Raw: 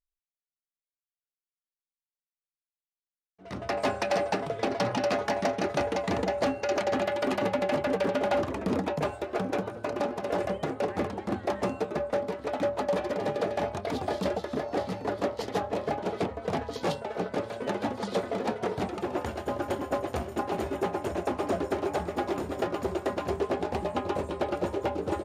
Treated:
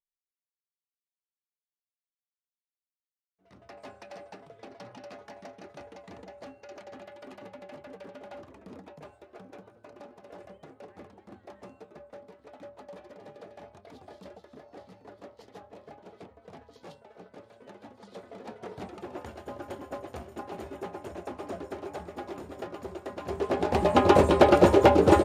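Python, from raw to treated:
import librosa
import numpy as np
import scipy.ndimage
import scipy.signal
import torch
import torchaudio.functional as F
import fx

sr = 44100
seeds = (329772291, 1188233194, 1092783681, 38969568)

y = fx.gain(x, sr, db=fx.line((17.96, -18.5), (18.86, -9.0), (23.12, -9.0), (23.46, 0.0), (24.1, 12.0)))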